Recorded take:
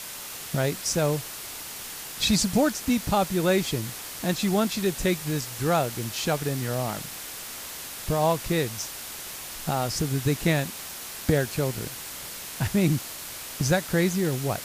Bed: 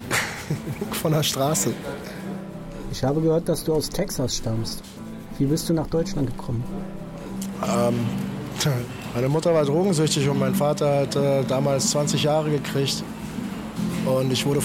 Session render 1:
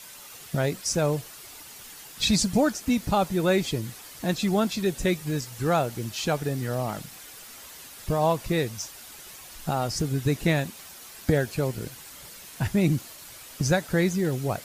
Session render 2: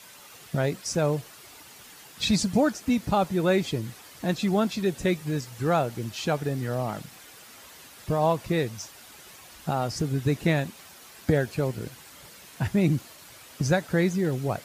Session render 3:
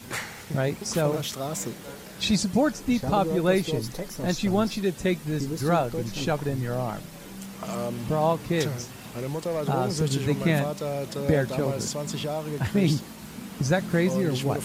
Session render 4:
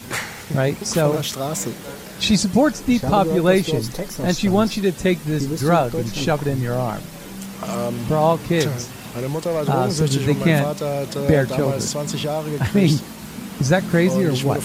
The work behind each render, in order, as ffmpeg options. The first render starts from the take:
-af "afftdn=nr=9:nf=-38"
-af "highpass=64,highshelf=f=4.5k:g=-6.5"
-filter_complex "[1:a]volume=-9.5dB[a];[0:a][a]amix=inputs=2:normalize=0"
-af "volume=6.5dB"

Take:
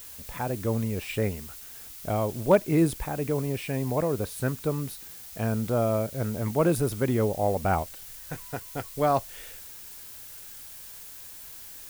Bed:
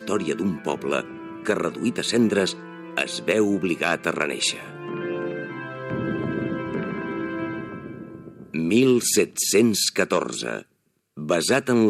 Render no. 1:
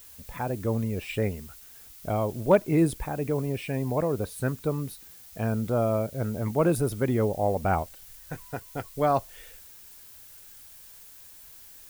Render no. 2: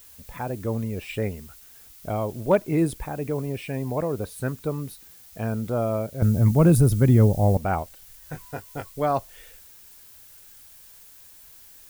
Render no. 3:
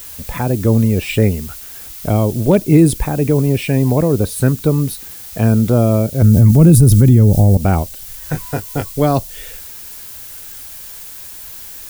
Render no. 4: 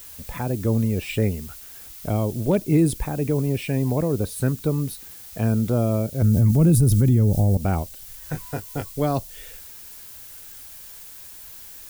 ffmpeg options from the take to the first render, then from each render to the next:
-af "afftdn=nr=6:nf=-44"
-filter_complex "[0:a]asettb=1/sr,asplit=3[a][b][c];[a]atrim=end=6.224[d];[b]atrim=start=6.22:end=7.57,asetpts=PTS-STARTPTS,afade=t=in:d=0.004:c=qsin,afade=t=out:st=1.346:d=0.004:c=qsin,bass=f=250:g=14,treble=f=4k:g=6[e];[c]atrim=start=7.566[f];[d][e]acrossfade=d=0.004:c1=hsin:c2=qsin[g];[g][f]acrossfade=d=0.004:c1=qsin:c2=hsin,asettb=1/sr,asplit=3[h][i][j];[h]atrim=end=8.204[k];[i]atrim=start=8.2:end=8.92,asetpts=PTS-STARTPTS,afade=t=in:d=0.004:c=qsin,afade=t=out:st=0.716:d=0.004:c=qsin,asplit=2[l][m];[m]adelay=20,volume=-5.5dB[n];[l][n]amix=inputs=2:normalize=0,atrim=end_sample=31752[o];[j]atrim=start=8.916[p];[k][o]acrossfade=d=0.004:c1=hsin:c2=qsin[q];[q][p]acrossfade=d=0.004:c1=qsin:c2=hsin"
-filter_complex "[0:a]acrossover=split=400|3000[a][b][c];[b]acompressor=threshold=-46dB:ratio=2[d];[a][d][c]amix=inputs=3:normalize=0,alimiter=level_in=16dB:limit=-1dB:release=50:level=0:latency=1"
-af "volume=-8.5dB"

